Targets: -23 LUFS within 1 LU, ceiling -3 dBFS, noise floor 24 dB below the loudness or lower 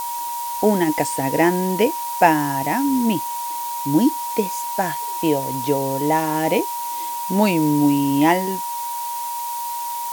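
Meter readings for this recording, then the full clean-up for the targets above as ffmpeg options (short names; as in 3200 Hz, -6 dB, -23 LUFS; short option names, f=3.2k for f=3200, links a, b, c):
steady tone 950 Hz; tone level -25 dBFS; noise floor -27 dBFS; noise floor target -45 dBFS; loudness -20.5 LUFS; peak -1.5 dBFS; loudness target -23.0 LUFS
-> -af "bandreject=f=950:w=30"
-af "afftdn=nr=18:nf=-27"
-af "volume=-2.5dB"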